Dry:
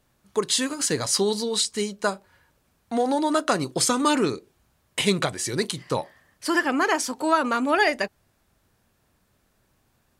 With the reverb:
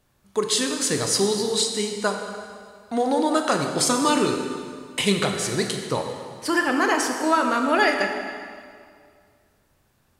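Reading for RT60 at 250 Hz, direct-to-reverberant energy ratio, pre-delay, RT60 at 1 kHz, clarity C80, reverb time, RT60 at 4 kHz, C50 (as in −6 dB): 2.2 s, 3.5 dB, 17 ms, 2.1 s, 6.0 dB, 2.1 s, 1.8 s, 5.0 dB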